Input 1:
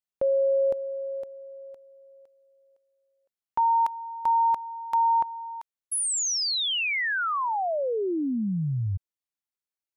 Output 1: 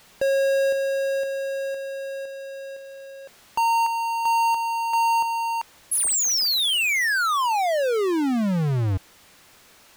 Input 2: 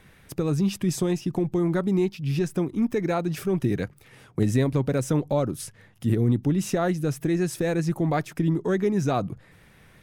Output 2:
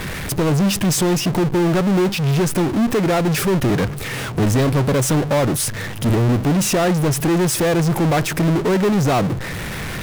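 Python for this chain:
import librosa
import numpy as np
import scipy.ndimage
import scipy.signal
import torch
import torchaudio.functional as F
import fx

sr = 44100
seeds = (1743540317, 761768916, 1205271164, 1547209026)

y = fx.power_curve(x, sr, exponent=0.35)
y = fx.backlash(y, sr, play_db=-40.5)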